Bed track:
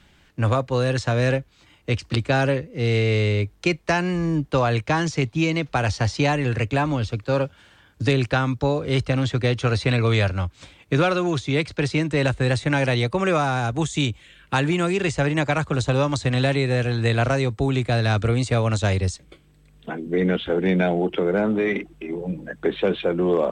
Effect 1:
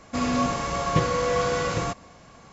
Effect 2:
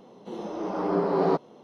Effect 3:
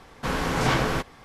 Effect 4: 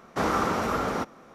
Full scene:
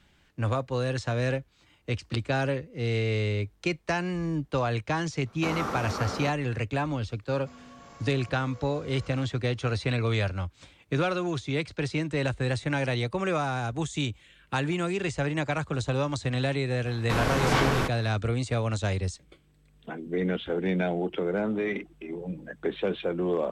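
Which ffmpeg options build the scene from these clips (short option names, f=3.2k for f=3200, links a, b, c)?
-filter_complex "[0:a]volume=-7dB[a];[1:a]acompressor=threshold=-33dB:ratio=6:attack=17:release=38:knee=1:detection=peak[b];[4:a]atrim=end=1.34,asetpts=PTS-STARTPTS,volume=-6.5dB,afade=t=in:d=0.004:c=hsin,afade=t=out:st=1.336:d=0.004:c=hsin,adelay=5260[c];[b]atrim=end=2.52,asetpts=PTS-STARTPTS,volume=-17.5dB,afade=t=in:d=0.004:c=hsin,afade=t=out:st=2.516:d=0.004:c=hsin,adelay=7330[d];[3:a]atrim=end=1.24,asetpts=PTS-STARTPTS,volume=-1dB,afade=t=in:d=0.004:c=hsin,afade=t=out:st=1.236:d=0.004:c=hsin,adelay=16860[e];[a][c][d][e]amix=inputs=4:normalize=0"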